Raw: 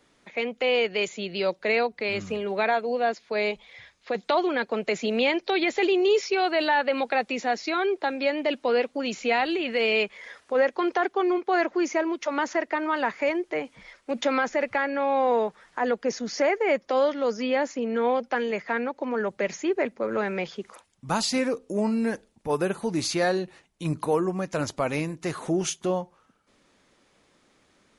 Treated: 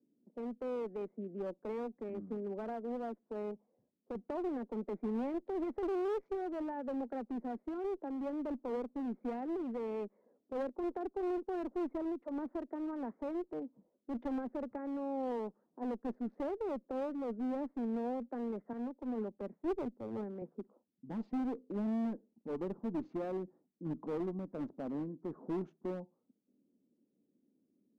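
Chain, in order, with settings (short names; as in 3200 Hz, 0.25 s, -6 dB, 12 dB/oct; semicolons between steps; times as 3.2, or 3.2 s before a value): Wiener smoothing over 15 samples; ladder band-pass 280 Hz, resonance 50%; low-pass opened by the level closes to 360 Hz, open at -34 dBFS; one-sided clip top -38.5 dBFS, bottom -30.5 dBFS; 18.73–20.42 three-band expander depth 100%; gain +1.5 dB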